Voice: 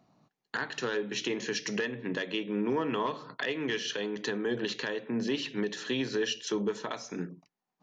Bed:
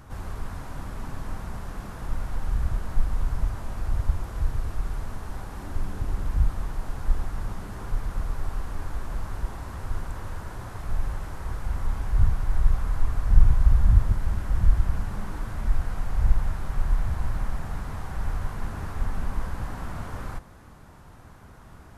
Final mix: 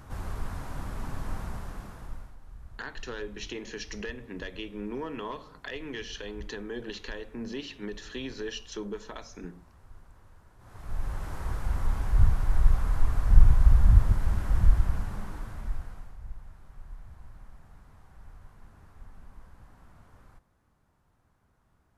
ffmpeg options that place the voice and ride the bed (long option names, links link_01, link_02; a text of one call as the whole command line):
ffmpeg -i stem1.wav -i stem2.wav -filter_complex "[0:a]adelay=2250,volume=-6dB[link_01];[1:a]volume=19.5dB,afade=type=out:start_time=1.42:duration=0.94:silence=0.1,afade=type=in:start_time=10.58:duration=0.77:silence=0.0944061,afade=type=out:start_time=14.57:duration=1.61:silence=0.0944061[link_02];[link_01][link_02]amix=inputs=2:normalize=0" out.wav